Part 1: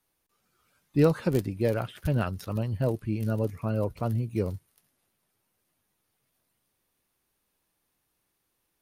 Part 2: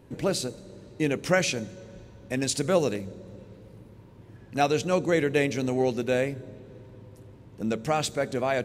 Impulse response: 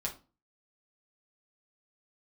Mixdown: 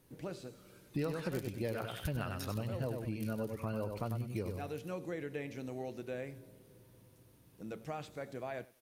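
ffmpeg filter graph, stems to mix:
-filter_complex "[0:a]tiltshelf=f=970:g=-3.5,volume=2dB,asplit=2[a][b];[b]volume=-6.5dB[c];[1:a]acrossover=split=2800[d][e];[e]acompressor=threshold=-42dB:ratio=4:attack=1:release=60[f];[d][f]amix=inputs=2:normalize=0,volume=-16.5dB,asplit=3[g][h][i];[h]volume=-10.5dB[j];[i]volume=-20dB[k];[2:a]atrim=start_sample=2205[l];[j][l]afir=irnorm=-1:irlink=0[m];[c][k]amix=inputs=2:normalize=0,aecho=0:1:96|192|288|384:1|0.25|0.0625|0.0156[n];[a][g][m][n]amix=inputs=4:normalize=0,acompressor=threshold=-36dB:ratio=4"

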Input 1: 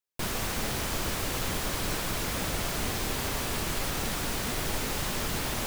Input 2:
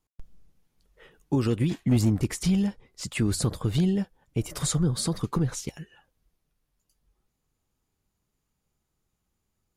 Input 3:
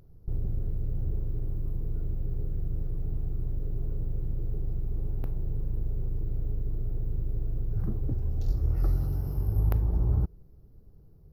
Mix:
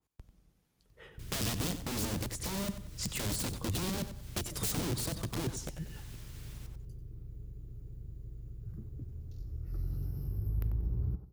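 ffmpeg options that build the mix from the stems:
-filter_complex "[0:a]alimiter=level_in=4.5dB:limit=-24dB:level=0:latency=1:release=402,volume=-4.5dB,adelay=1000,volume=-11.5dB,asplit=2[a][b];[b]volume=-12dB[c];[1:a]aeval=exprs='(mod(15*val(0)+1,2)-1)/15':c=same,volume=-0.5dB,asplit=2[d][e];[e]volume=-12dB[f];[2:a]adelay=900,volume=-0.5dB,afade=t=in:st=9.62:d=0.36:silence=0.375837,asplit=2[g][h];[h]volume=-21.5dB[i];[a][g]amix=inputs=2:normalize=0,equalizer=f=790:t=o:w=1.4:g=-14,acompressor=threshold=-40dB:ratio=1.5,volume=0dB[j];[c][f][i]amix=inputs=3:normalize=0,aecho=0:1:93|186|279|372:1|0.24|0.0576|0.0138[k];[d][j][k]amix=inputs=3:normalize=0,highpass=44,acrossover=split=340|3000[l][m][n];[m]acompressor=threshold=-48dB:ratio=3[o];[l][o][n]amix=inputs=3:normalize=0,adynamicequalizer=threshold=0.00224:dfrequency=1800:dqfactor=0.7:tfrequency=1800:tqfactor=0.7:attack=5:release=100:ratio=0.375:range=3.5:mode=cutabove:tftype=highshelf"

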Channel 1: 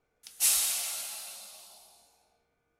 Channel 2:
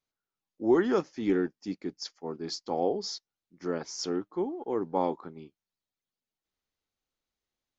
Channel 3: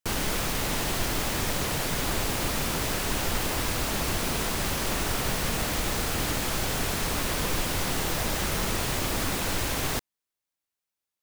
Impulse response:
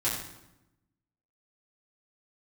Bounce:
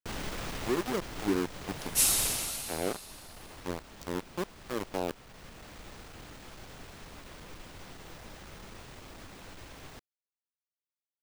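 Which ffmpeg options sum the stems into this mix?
-filter_complex "[0:a]adelay=1550,volume=0dB[a];[1:a]equalizer=f=1.6k:w=0.35:g=-12,dynaudnorm=f=230:g=7:m=9dB,aeval=exprs='val(0)*gte(abs(val(0)),0.0891)':c=same,volume=-7.5dB,asplit=2[b][c];[2:a]equalizer=f=15k:w=0.37:g=-10.5,aeval=exprs='clip(val(0),-1,0.0422)':c=same,volume=-7.5dB,afade=t=out:st=2.26:d=0.26:silence=0.298538[d];[c]apad=whole_len=495124[e];[d][e]sidechaincompress=threshold=-32dB:ratio=6:attack=27:release=971[f];[a][b][f]amix=inputs=3:normalize=0"

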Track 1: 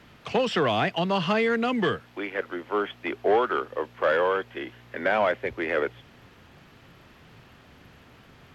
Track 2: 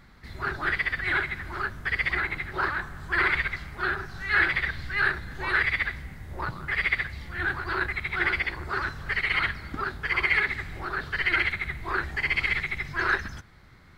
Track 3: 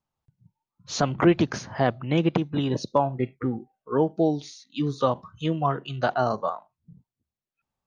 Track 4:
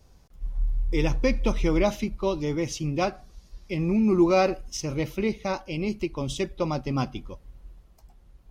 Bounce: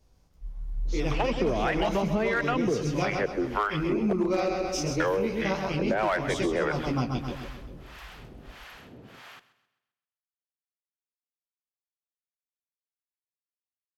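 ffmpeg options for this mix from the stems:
-filter_complex "[0:a]acrossover=split=610[a][b];[a]aeval=exprs='val(0)*(1-1/2+1/2*cos(2*PI*1.6*n/s))':c=same[c];[b]aeval=exprs='val(0)*(1-1/2-1/2*cos(2*PI*1.6*n/s))':c=same[d];[c][d]amix=inputs=2:normalize=0,acrossover=split=2500[e][f];[f]acompressor=threshold=-51dB:ratio=4:attack=1:release=60[g];[e][g]amix=inputs=2:normalize=0,highpass=f=190:p=1,adelay=850,volume=2.5dB,asplit=3[h][i][j];[h]atrim=end=4.13,asetpts=PTS-STARTPTS,afade=t=out:st=4.126:d=0.004:c=hsin[k];[i]atrim=start=4.13:end=5,asetpts=PTS-STARTPTS,volume=0[l];[j]atrim=start=5,asetpts=PTS-STARTPTS,afade=t=in:d=0.004:c=hsin[m];[k][l][m]concat=n=3:v=0:a=1,asplit=2[n][o];[o]volume=-16.5dB[p];[2:a]alimiter=limit=-18dB:level=0:latency=1,volume=-17.5dB[q];[3:a]flanger=delay=16:depth=5.5:speed=3,volume=-4.5dB,asplit=2[r][s];[s]volume=-6dB[t];[p][t]amix=inputs=2:normalize=0,aecho=0:1:131|262|393|524|655|786|917:1|0.47|0.221|0.104|0.0488|0.0229|0.0108[u];[n][q][r][u]amix=inputs=4:normalize=0,dynaudnorm=f=220:g=9:m=8.5dB,asoftclip=type=hard:threshold=-11dB,acompressor=threshold=-23dB:ratio=6"

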